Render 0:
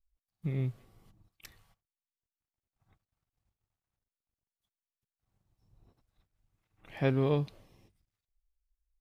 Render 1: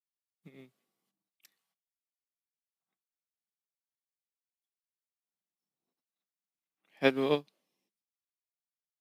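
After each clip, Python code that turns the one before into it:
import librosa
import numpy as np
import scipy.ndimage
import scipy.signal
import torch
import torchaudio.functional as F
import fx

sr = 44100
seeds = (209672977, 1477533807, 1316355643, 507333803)

y = scipy.signal.sosfilt(scipy.signal.butter(6, 180.0, 'highpass', fs=sr, output='sos'), x)
y = fx.high_shelf(y, sr, hz=2200.0, db=10.0)
y = fx.upward_expand(y, sr, threshold_db=-42.0, expansion=2.5)
y = y * 10.0 ** (5.0 / 20.0)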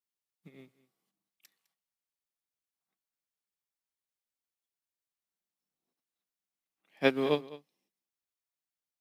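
y = x + 10.0 ** (-18.5 / 20.0) * np.pad(x, (int(207 * sr / 1000.0), 0))[:len(x)]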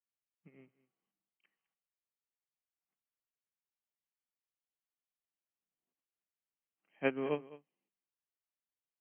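y = fx.brickwall_lowpass(x, sr, high_hz=3200.0)
y = y * 10.0 ** (-6.5 / 20.0)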